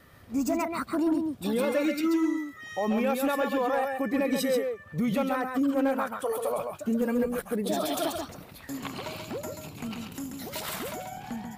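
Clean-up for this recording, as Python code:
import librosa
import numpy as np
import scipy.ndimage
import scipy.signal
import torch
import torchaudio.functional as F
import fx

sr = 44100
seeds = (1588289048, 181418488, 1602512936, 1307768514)

y = fx.fix_declip(x, sr, threshold_db=-19.5)
y = fx.fix_echo_inverse(y, sr, delay_ms=135, level_db=-5.0)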